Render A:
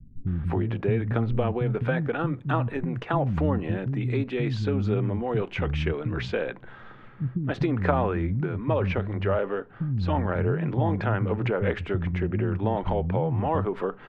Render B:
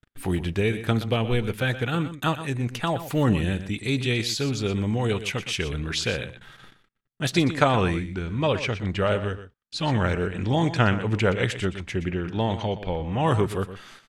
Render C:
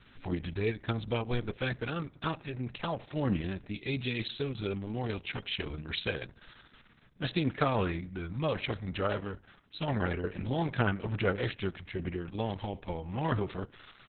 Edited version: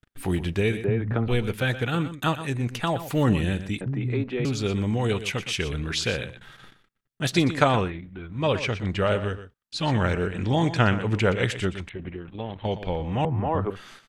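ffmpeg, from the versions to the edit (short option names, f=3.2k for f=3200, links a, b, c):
-filter_complex "[0:a]asplit=3[a][b][c];[2:a]asplit=2[d][e];[1:a]asplit=6[f][g][h][i][j][k];[f]atrim=end=0.842[l];[a]atrim=start=0.838:end=1.282[m];[g]atrim=start=1.278:end=3.812[n];[b]atrim=start=3.808:end=4.452[o];[h]atrim=start=4.448:end=7.91[p];[d]atrim=start=7.75:end=8.47[q];[i]atrim=start=8.31:end=11.892[r];[e]atrim=start=11.888:end=12.652[s];[j]atrim=start=12.648:end=13.252[t];[c]atrim=start=13.248:end=13.702[u];[k]atrim=start=13.698[v];[l][m]acrossfade=d=0.004:c1=hsin:c2=hsin[w];[w][n]acrossfade=d=0.004:c1=hsin:c2=hsin[x];[x][o]acrossfade=d=0.004:c1=hsin:c2=hsin[y];[y][p]acrossfade=d=0.004:c1=hsin:c2=hsin[z];[z][q]acrossfade=d=0.16:c1=tri:c2=tri[aa];[aa][r]acrossfade=d=0.16:c1=tri:c2=tri[ab];[ab][s]acrossfade=d=0.004:c1=hsin:c2=hsin[ac];[ac][t]acrossfade=d=0.004:c1=hsin:c2=hsin[ad];[ad][u]acrossfade=d=0.004:c1=hsin:c2=hsin[ae];[ae][v]acrossfade=d=0.004:c1=hsin:c2=hsin"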